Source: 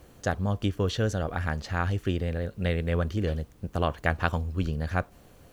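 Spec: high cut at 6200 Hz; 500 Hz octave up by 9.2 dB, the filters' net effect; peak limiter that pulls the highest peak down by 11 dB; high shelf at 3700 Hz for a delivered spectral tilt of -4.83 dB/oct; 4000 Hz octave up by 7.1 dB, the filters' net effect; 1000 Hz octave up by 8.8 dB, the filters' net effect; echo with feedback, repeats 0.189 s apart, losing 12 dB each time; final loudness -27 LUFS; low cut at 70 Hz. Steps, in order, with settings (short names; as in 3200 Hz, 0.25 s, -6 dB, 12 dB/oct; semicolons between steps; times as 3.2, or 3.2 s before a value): HPF 70 Hz; LPF 6200 Hz; bell 500 Hz +8.5 dB; bell 1000 Hz +8 dB; high shelf 3700 Hz +5 dB; bell 4000 Hz +6 dB; limiter -10.5 dBFS; feedback echo 0.189 s, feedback 25%, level -12 dB; gain -1 dB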